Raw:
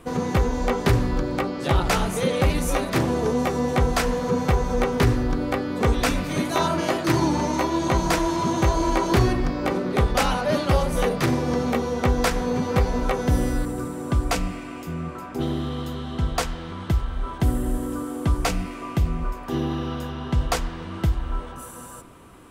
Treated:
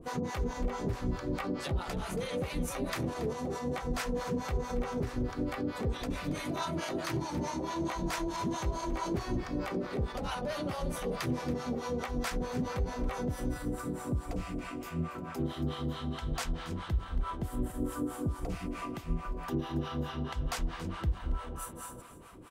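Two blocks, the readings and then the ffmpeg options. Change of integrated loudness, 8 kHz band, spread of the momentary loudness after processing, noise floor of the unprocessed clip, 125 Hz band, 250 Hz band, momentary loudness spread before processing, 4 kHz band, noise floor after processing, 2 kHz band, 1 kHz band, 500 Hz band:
-11.5 dB, -11.0 dB, 4 LU, -37 dBFS, -11.5 dB, -10.5 dB, 9 LU, -11.0 dB, -44 dBFS, -12.0 dB, -12.0 dB, -12.0 dB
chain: -filter_complex "[0:a]acompressor=threshold=0.0891:ratio=6,alimiter=limit=0.0841:level=0:latency=1:release=71,acrossover=split=610[s0][s1];[s0]aeval=exprs='val(0)*(1-1/2+1/2*cos(2*PI*4.6*n/s))':c=same[s2];[s1]aeval=exprs='val(0)*(1-1/2-1/2*cos(2*PI*4.6*n/s))':c=same[s3];[s2][s3]amix=inputs=2:normalize=0,aecho=1:1:278:0.178"

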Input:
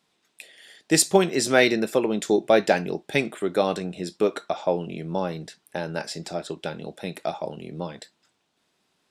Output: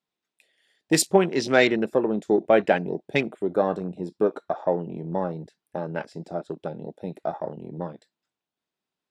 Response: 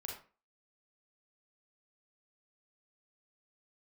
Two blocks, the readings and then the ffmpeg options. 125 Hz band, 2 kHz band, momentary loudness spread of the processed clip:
0.0 dB, -1.0 dB, 15 LU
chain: -af "highshelf=f=4800:g=-4.5,afwtdn=0.02"

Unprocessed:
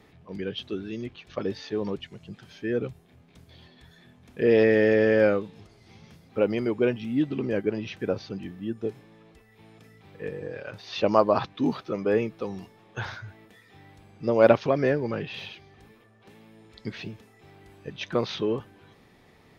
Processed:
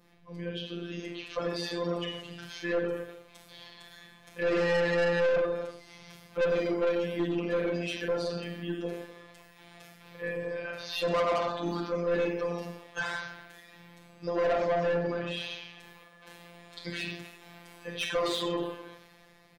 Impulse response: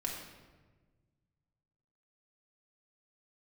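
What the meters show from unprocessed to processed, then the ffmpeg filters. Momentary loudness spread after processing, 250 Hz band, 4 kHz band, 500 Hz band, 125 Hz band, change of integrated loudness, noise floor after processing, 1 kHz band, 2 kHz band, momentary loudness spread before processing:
22 LU, -7.0 dB, +2.0 dB, -4.5 dB, -5.0 dB, -5.0 dB, -57 dBFS, -3.0 dB, -1.0 dB, 20 LU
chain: -filter_complex "[0:a]highshelf=f=5500:g=5.5,asplit=2[s0][s1];[s1]adelay=250,highpass=300,lowpass=3400,asoftclip=type=hard:threshold=0.266,volume=0.158[s2];[s0][s2]amix=inputs=2:normalize=0[s3];[1:a]atrim=start_sample=2205,afade=t=out:st=0.22:d=0.01,atrim=end_sample=10143[s4];[s3][s4]afir=irnorm=-1:irlink=0,acrossover=split=480[s5][s6];[s6]dynaudnorm=f=190:g=11:m=3.76[s7];[s5][s7]amix=inputs=2:normalize=0,afftfilt=real='hypot(re,im)*cos(PI*b)':imag='0':win_size=1024:overlap=0.75,adynamicequalizer=threshold=0.0178:dfrequency=2300:dqfactor=1.4:tfrequency=2300:tqfactor=1.4:attack=5:release=100:ratio=0.375:range=2:mode=cutabove:tftype=bell,asoftclip=type=tanh:threshold=0.106,aeval=exprs='0.106*(cos(1*acos(clip(val(0)/0.106,-1,1)))-cos(1*PI/2))+0.0133*(cos(2*acos(clip(val(0)/0.106,-1,1)))-cos(2*PI/2))':c=same,volume=0.668"

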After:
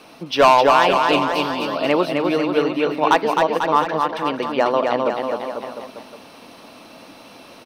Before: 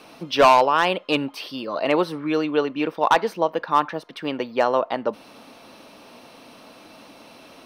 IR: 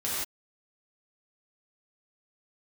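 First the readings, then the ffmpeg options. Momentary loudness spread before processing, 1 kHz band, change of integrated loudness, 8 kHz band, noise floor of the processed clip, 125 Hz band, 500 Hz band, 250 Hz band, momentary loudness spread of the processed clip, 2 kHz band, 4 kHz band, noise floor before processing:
14 LU, +3.5 dB, +3.5 dB, +3.5 dB, -44 dBFS, +4.0 dB, +4.0 dB, +3.5 dB, 12 LU, +3.5 dB, +3.5 dB, -48 dBFS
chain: -af "aecho=1:1:260|494|704.6|894.1|1065:0.631|0.398|0.251|0.158|0.1,volume=1.19"

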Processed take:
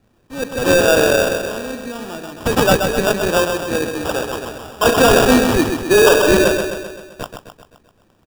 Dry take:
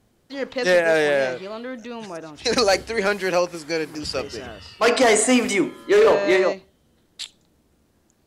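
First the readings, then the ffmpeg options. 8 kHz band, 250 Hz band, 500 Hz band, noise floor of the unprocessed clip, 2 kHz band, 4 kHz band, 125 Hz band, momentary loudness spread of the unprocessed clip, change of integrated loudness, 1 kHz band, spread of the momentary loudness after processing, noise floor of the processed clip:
+4.5 dB, +6.5 dB, +4.5 dB, -63 dBFS, +4.5 dB, +5.0 dB, +13.0 dB, 19 LU, +4.5 dB, +6.0 dB, 19 LU, -58 dBFS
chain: -af "adynamicequalizer=threshold=0.00794:dfrequency=5300:dqfactor=1.9:tfrequency=5300:tqfactor=1.9:attack=5:release=100:ratio=0.375:range=3:mode=boostabove:tftype=bell,acrusher=samples=21:mix=1:aa=0.000001,aecho=1:1:130|260|390|520|650|780|910:0.501|0.276|0.152|0.0834|0.0459|0.0252|0.0139,volume=1.5"

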